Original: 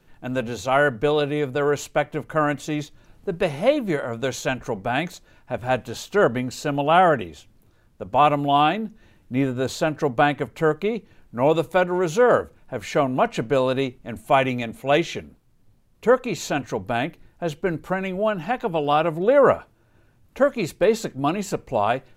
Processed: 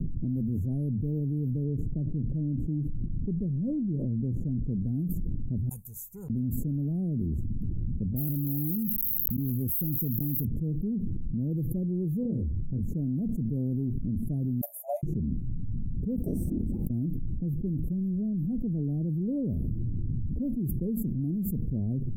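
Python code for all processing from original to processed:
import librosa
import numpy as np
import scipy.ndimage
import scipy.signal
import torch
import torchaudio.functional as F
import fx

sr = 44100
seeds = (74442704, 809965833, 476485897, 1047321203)

y = fx.chain(x, sr, fx.median_filter(points=9),
    fx.lowpass(hz=5900.0, slope=12),
    fx.gate_hold(open_db=-42.0, close_db=-45.0, hold_ms=71.0, range_db=-21, attack_ms=1.4, release_ms=100.0), at=(1.64, 4.72))
y = fx.chain(y, sr, fx.ellip_highpass(hz=1000.0, order=4, stop_db=40),
    fx.high_shelf(hz=2900.0, db=11.5), at=(5.69, 6.3))
y = fx.chain(y, sr, fx.crossing_spikes(level_db=-11.0),
    fx.auto_swell(attack_ms=786.0),
    fx.sustainer(db_per_s=36.0), at=(8.16, 10.45))
y = fx.chain(y, sr, fx.lowpass(hz=11000.0, slope=24),
    fx.peak_eq(hz=72.0, db=7.0, octaves=0.98),
    fx.detune_double(cents=53), at=(12.23, 12.83))
y = fx.chain(y, sr, fx.brickwall_highpass(low_hz=580.0),
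    fx.high_shelf(hz=8400.0, db=11.5), at=(14.61, 15.03))
y = fx.chain(y, sr, fx.highpass(hz=1000.0, slope=12),
    fx.ring_mod(carrier_hz=1800.0),
    fx.sustainer(db_per_s=43.0), at=(16.16, 16.9))
y = scipy.signal.sosfilt(scipy.signal.cheby2(4, 80, [1100.0, 4600.0], 'bandstop', fs=sr, output='sos'), y)
y = fx.env_lowpass(y, sr, base_hz=3000.0, full_db=-27.5)
y = fx.env_flatten(y, sr, amount_pct=100)
y = y * librosa.db_to_amplitude(-6.0)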